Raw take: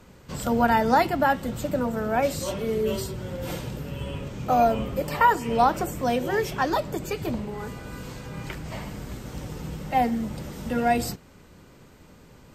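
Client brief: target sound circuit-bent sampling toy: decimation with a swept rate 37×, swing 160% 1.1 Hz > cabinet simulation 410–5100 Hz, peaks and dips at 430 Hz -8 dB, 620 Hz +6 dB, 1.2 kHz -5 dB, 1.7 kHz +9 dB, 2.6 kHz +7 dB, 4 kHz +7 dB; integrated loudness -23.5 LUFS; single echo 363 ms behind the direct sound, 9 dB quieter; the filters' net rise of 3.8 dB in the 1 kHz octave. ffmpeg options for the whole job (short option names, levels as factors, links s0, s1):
-af "equalizer=f=1000:t=o:g=4.5,aecho=1:1:363:0.355,acrusher=samples=37:mix=1:aa=0.000001:lfo=1:lforange=59.2:lforate=1.1,highpass=410,equalizer=f=430:t=q:w=4:g=-8,equalizer=f=620:t=q:w=4:g=6,equalizer=f=1200:t=q:w=4:g=-5,equalizer=f=1700:t=q:w=4:g=9,equalizer=f=2600:t=q:w=4:g=7,equalizer=f=4000:t=q:w=4:g=7,lowpass=f=5100:w=0.5412,lowpass=f=5100:w=1.3066,volume=0.944"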